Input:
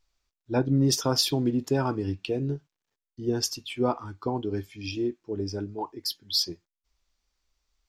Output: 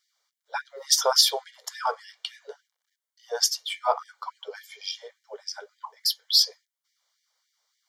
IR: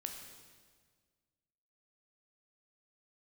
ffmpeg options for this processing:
-af "asuperstop=centerf=2600:order=8:qfactor=6.1,afftfilt=real='re*gte(b*sr/1024,420*pow(1700/420,0.5+0.5*sin(2*PI*3.5*pts/sr)))':imag='im*gte(b*sr/1024,420*pow(1700/420,0.5+0.5*sin(2*PI*3.5*pts/sr)))':win_size=1024:overlap=0.75,volume=6.5dB"

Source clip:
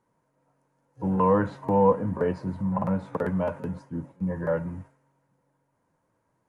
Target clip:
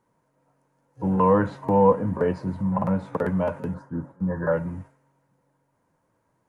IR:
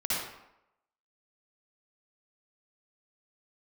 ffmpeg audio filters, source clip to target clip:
-filter_complex "[0:a]asettb=1/sr,asplit=3[link_01][link_02][link_03];[link_01]atrim=end=3.744[link_04];[link_02]atrim=start=3.74:end=4.52,asetpts=PTS-STARTPTS,afade=type=in:duration=0.004:curve=qsin,afade=type=out:start_time=0.776:duration=0.004:curve=qsin,highshelf=frequency=1900:width_type=q:width=3:gain=-7[link_05];[link_03]atrim=start=4.516[link_06];[link_04][link_05]acrossfade=duration=0.004:curve1=hsin:curve2=qsin[link_07];[link_07][link_06]acrossfade=duration=0.004:curve1=qsin:curve2=hsin,volume=2.5dB"

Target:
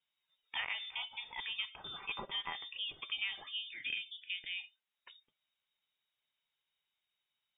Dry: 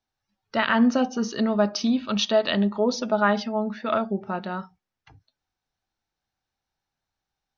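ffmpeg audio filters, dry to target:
ffmpeg -i in.wav -filter_complex "[0:a]asettb=1/sr,asplit=3[link_01][link_02][link_03];[link_01]atrim=end=1.994[link_04];[link_02]atrim=start=1.99:end=2.58,asetpts=PTS-STARTPTS,afade=type=in:duration=0.004:curve=qsin,afade=type=out:start_time=0.586:duration=0.004:curve=qsin,aecho=1:1:5:0.57,atrim=end_sample=26019[link_05];[link_03]atrim=start=2.576[link_06];[link_04][link_05]acrossfade=duration=0.004:curve1=hsin:curve2=qsin[link_07];[link_07][link_06]acrossfade=duration=0.004:curve1=qsin:curve2=hsin,acrossover=split=270|890[link_08][link_09][link_10];[link_08]acompressor=threshold=-60dB:ratio=4[link_11];[link_09]acompressor=threshold=-53dB:ratio=4[link_12];[link_10]acompressor=threshold=-36dB:ratio=4[link_13];[link_11][link_12][link_13]amix=inputs=3:normalize=0,asettb=1/sr,asplit=3[link_14][link_15][link_16];[link_14]atrim=end=3.714[link_17];[link_15]atrim=start=3.71:end=4.58,asetpts=PTS-STARTPTS,afade=type=in:duration=0.004:curve=qsin,afade=type=out:start_time=0.866:duration=0.004:curve=qsin,asuperstop=centerf=2700:order=4:qfactor=1.9[link_18];[link_16]atrim=start=4.576[link_19];[link_17][link_18]acrossfade=duration=0.004:curve1=hsin:curve2=qsin[link_20];[link_20][link_19]acrossfade=duration=0.004:curve1=qsin:curve2=hsin,lowpass=frequency=3200:width_type=q:width=0.5098,lowpass=frequency=3200:width_type=q:width=0.6013,lowpass=frequency=3200:width_type=q:width=0.9,lowpass=frequency=3200:width_type=q:width=2.563,afreqshift=-3800,volume=-2dB" out.wav

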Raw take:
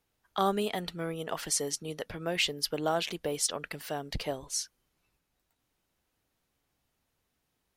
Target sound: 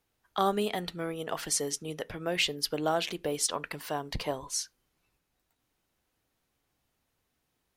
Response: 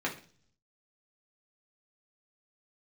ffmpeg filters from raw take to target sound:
-filter_complex "[0:a]asettb=1/sr,asplit=3[link_01][link_02][link_03];[link_01]atrim=end=1.734[link_04];[link_02]atrim=start=1.73:end=2.32,asetpts=PTS-STARTPTS,afade=type=in:duration=0.004:curve=qsin,afade=type=out:start_time=0.586:duration=0.004:curve=qsin,bandreject=frequency=4400:width=8.4[link_05];[link_03]atrim=start=2.316[link_06];[link_04][link_05]acrossfade=duration=0.004:curve1=hsin:curve2=qsin[link_07];[link_07][link_06]acrossfade=duration=0.004:curve1=qsin:curve2=hsin,asettb=1/sr,asplit=3[link_08][link_09][link_10];[link_08]atrim=end=3.464[link_11];[link_09]atrim=start=3.46:end=4.61,asetpts=PTS-STARTPTS,afade=type=in:duration=0.004:curve=qsin,afade=type=out:start_time=1.146:duration=0.004:curve=qsin,equalizer=frequency=1000:width_type=o:width=0.34:gain=9.5[link_12];[link_10]atrim=start=4.606[link_13];[link_11][link_12]acrossfade=duration=0.004:curve1=hsin:curve2=qsin[link_14];[link_14][link_13]acrossfade=duration=0.004:curve1=qsin:curve2=hsin,asplit=2[link_15][link_16];[1:a]atrim=start_sample=2205,atrim=end_sample=4410[link_17];[link_16][link_17]afir=irnorm=-1:irlink=0,volume=-22dB[link_18];[link_15][link_18]amix=inputs=2:normalize=0"

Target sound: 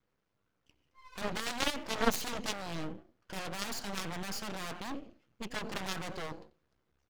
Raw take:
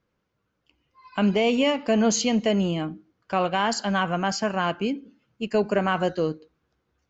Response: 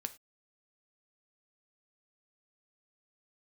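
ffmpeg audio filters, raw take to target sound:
-filter_complex "[0:a]asplit=3[link_01][link_02][link_03];[link_02]adelay=89,afreqshift=30,volume=-20dB[link_04];[link_03]adelay=178,afreqshift=60,volume=-30.5dB[link_05];[link_01][link_04][link_05]amix=inputs=3:normalize=0,aeval=exprs='0.299*(cos(1*acos(clip(val(0)/0.299,-1,1)))-cos(1*PI/2))+0.119*(cos(3*acos(clip(val(0)/0.299,-1,1)))-cos(3*PI/2))+0.00841*(cos(4*acos(clip(val(0)/0.299,-1,1)))-cos(4*PI/2))+0.00596*(cos(7*acos(clip(val(0)/0.299,-1,1)))-cos(7*PI/2))':channel_layout=same,aeval=exprs='max(val(0),0)':channel_layout=same,volume=8.5dB"

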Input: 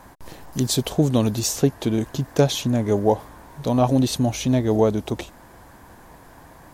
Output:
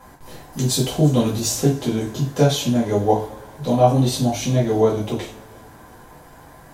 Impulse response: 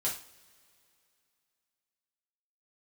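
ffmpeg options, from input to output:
-filter_complex "[1:a]atrim=start_sample=2205[link_01];[0:a][link_01]afir=irnorm=-1:irlink=0,volume=-2.5dB"

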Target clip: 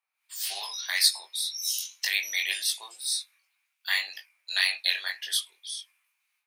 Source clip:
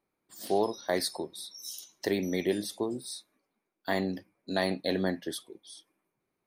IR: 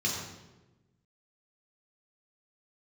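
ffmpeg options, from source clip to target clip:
-filter_complex "[0:a]highpass=frequency=870:width=0.5412,highpass=frequency=870:width=1.3066,equalizer=frequency=2600:width=3:gain=7.5,acrossover=split=1800[link_01][link_02];[link_01]alimiter=level_in=10.5dB:limit=-24dB:level=0:latency=1:release=117,volume=-10.5dB[link_03];[link_02]dynaudnorm=framelen=130:gausssize=3:maxgain=15dB[link_04];[link_03][link_04]amix=inputs=2:normalize=0,flanger=delay=19.5:depth=3.8:speed=1.9"

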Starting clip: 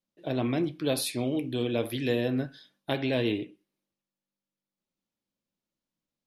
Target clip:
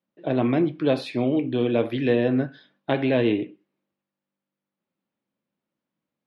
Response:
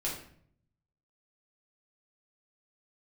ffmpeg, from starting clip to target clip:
-af "highpass=120,lowpass=2300,volume=7dB"

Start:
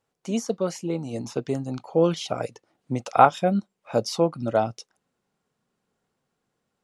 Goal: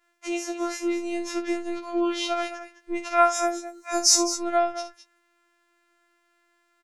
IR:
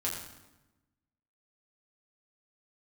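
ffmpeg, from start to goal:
-filter_complex "[0:a]acompressor=threshold=-34dB:ratio=2,asettb=1/sr,asplit=3[link_01][link_02][link_03];[link_01]atrim=end=3.214[link_04];[link_02]atrim=start=3.21:end=4.36,asetpts=PTS-STARTPTS,afade=type=in:duration=0.004:curve=qsin,afade=type=out:start_time=1.146:duration=0.004:curve=qsin,highshelf=frequency=4600:width_type=q:width=3:gain=13[link_05];[link_03]atrim=start=4.356[link_06];[link_04][link_05]acrossfade=duration=0.004:curve1=hsin:curve2=qsin[link_07];[link_07][link_06]acrossfade=duration=0.004:curve1=qsin:curve2=hsin,asplit=2[link_08][link_09];[link_09]aecho=0:1:61.22|209.9:0.282|0.251[link_10];[link_08][link_10]amix=inputs=2:normalize=0,afftfilt=real='hypot(re,im)*cos(PI*b)':imag='0':win_size=512:overlap=0.75,equalizer=frequency=1900:width_type=o:width=0.98:gain=13.5,afftfilt=real='re*4*eq(mod(b,16),0)':imag='im*4*eq(mod(b,16),0)':win_size=2048:overlap=0.75"

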